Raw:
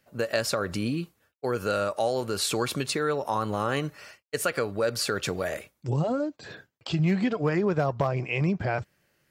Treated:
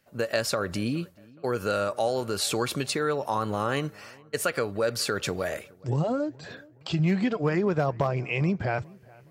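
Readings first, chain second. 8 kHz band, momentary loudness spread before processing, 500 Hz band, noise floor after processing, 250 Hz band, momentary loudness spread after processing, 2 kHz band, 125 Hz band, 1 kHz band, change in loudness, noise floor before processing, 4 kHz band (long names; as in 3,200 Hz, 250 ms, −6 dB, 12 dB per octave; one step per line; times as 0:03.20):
0.0 dB, 10 LU, 0.0 dB, −55 dBFS, 0.0 dB, 10 LU, 0.0 dB, 0.0 dB, 0.0 dB, 0.0 dB, −75 dBFS, 0.0 dB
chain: feedback echo with a low-pass in the loop 419 ms, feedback 44%, low-pass 2,100 Hz, level −24 dB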